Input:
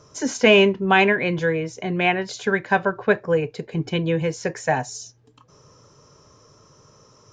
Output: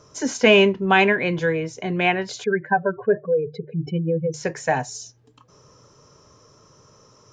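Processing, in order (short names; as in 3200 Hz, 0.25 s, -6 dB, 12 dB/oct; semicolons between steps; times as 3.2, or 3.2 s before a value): 2.44–4.34 spectral contrast raised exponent 2.4; notches 50/100/150 Hz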